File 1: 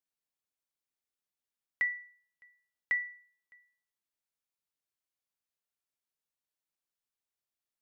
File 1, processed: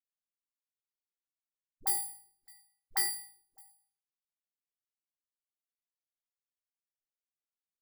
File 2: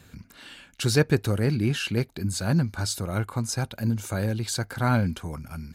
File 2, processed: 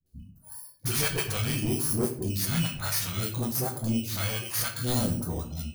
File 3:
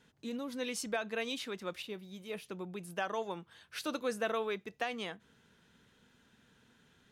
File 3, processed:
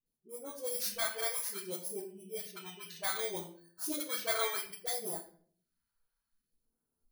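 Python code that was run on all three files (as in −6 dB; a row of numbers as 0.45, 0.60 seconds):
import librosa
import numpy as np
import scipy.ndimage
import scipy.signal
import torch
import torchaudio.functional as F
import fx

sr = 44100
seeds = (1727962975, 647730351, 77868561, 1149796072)

y = fx.bit_reversed(x, sr, seeds[0], block=16)
y = fx.noise_reduce_blind(y, sr, reduce_db=24)
y = fx.peak_eq(y, sr, hz=120.0, db=-10.0, octaves=2.3)
y = fx.dispersion(y, sr, late='highs', ms=60.0, hz=410.0)
y = fx.phaser_stages(y, sr, stages=2, low_hz=260.0, high_hz=2700.0, hz=0.62, feedback_pct=25)
y = 10.0 ** (-28.0 / 20.0) * np.tanh(y / 10.0 ** (-28.0 / 20.0))
y = fx.room_shoebox(y, sr, seeds[1], volume_m3=51.0, walls='mixed', distance_m=0.54)
y = y * 10.0 ** (4.0 / 20.0)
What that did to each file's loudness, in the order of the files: +1.5, −2.0, +3.0 LU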